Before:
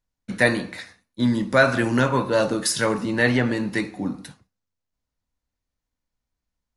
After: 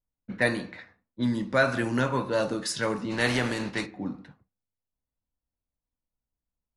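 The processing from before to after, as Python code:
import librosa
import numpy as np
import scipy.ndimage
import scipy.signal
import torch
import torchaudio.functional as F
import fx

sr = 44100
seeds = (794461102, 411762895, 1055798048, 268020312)

y = fx.spec_flatten(x, sr, power=0.66, at=(3.1, 3.85), fade=0.02)
y = fx.env_lowpass(y, sr, base_hz=1000.0, full_db=-17.0)
y = F.gain(torch.from_numpy(y), -6.0).numpy()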